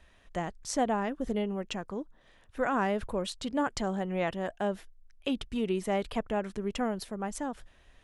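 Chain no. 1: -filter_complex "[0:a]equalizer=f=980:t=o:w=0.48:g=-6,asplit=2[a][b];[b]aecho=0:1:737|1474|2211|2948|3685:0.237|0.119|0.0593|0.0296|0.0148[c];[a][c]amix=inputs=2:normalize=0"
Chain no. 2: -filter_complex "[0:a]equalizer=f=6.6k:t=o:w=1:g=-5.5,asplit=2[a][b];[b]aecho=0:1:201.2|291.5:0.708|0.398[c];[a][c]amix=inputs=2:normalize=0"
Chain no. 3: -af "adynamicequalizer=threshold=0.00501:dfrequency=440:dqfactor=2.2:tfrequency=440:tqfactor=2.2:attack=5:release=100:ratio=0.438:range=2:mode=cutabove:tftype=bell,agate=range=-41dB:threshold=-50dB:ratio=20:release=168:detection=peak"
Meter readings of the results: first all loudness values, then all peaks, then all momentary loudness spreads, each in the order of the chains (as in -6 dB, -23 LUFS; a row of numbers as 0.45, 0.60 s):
-33.5, -31.0, -33.5 LUFS; -17.0, -16.0, -16.0 dBFS; 9, 9, 9 LU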